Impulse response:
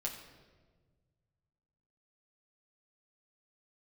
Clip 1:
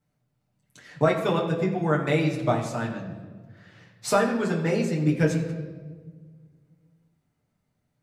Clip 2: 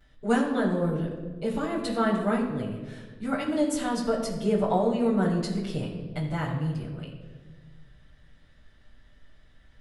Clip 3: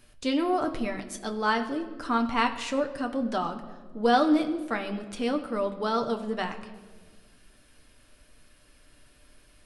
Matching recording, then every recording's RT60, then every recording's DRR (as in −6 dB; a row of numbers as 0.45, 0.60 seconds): 1; 1.5, 1.5, 1.5 seconds; −3.5, −11.0, 4.0 decibels